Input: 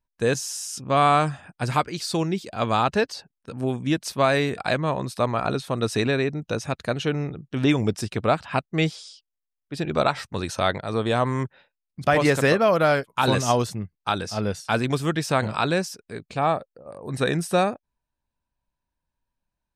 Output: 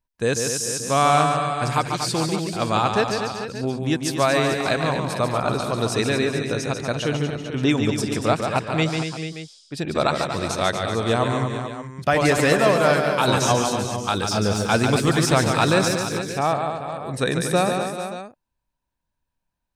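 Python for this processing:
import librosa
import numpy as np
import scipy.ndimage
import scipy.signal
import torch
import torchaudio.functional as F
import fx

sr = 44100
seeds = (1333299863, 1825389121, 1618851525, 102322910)

y = fx.dynamic_eq(x, sr, hz=7700.0, q=0.71, threshold_db=-45.0, ratio=4.0, max_db=5)
y = fx.leveller(y, sr, passes=1, at=(14.14, 16.3))
y = fx.echo_multitap(y, sr, ms=(144, 238, 385, 442, 578), db=(-6.0, -8.5, -14.5, -11.0, -14.0))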